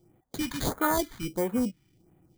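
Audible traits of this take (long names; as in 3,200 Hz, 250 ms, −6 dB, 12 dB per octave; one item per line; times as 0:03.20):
aliases and images of a low sample rate 2,700 Hz, jitter 0%
phaser sweep stages 2, 1.5 Hz, lowest notch 500–4,800 Hz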